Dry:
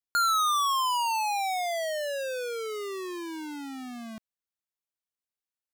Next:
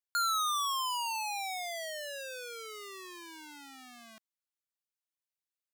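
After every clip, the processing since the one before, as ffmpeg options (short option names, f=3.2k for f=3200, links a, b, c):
-af "highpass=f=1.5k:p=1,volume=-3dB"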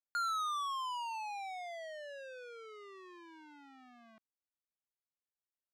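-af "adynamicsmooth=sensitivity=3:basefreq=1.7k,volume=-4dB"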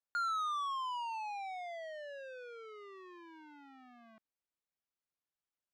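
-af "aemphasis=mode=reproduction:type=50kf,volume=1dB"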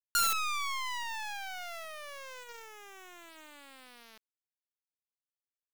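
-af "crystalizer=i=6.5:c=0,bandreject=f=163.4:t=h:w=4,bandreject=f=326.8:t=h:w=4,bandreject=f=490.2:t=h:w=4,acrusher=bits=5:dc=4:mix=0:aa=0.000001,volume=1.5dB"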